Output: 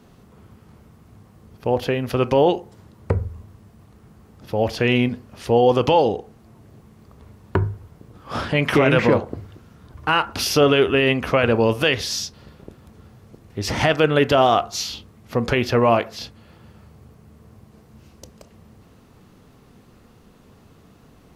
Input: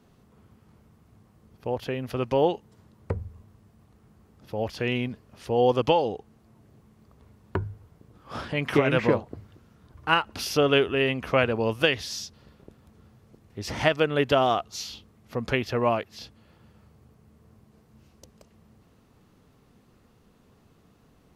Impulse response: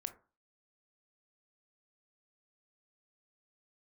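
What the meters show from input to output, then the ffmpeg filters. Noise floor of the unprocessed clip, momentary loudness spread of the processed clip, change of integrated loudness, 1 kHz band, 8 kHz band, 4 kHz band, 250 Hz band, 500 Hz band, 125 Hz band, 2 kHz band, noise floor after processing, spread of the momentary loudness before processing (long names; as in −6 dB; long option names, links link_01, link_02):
−60 dBFS, 16 LU, +6.0 dB, +6.5 dB, +8.5 dB, +6.0 dB, +7.0 dB, +6.0 dB, +7.5 dB, +5.5 dB, −52 dBFS, 16 LU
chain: -filter_complex "[0:a]alimiter=limit=-15dB:level=0:latency=1:release=13,asplit=2[link_01][link_02];[1:a]atrim=start_sample=2205[link_03];[link_02][link_03]afir=irnorm=-1:irlink=0,volume=2.5dB[link_04];[link_01][link_04]amix=inputs=2:normalize=0,volume=3dB"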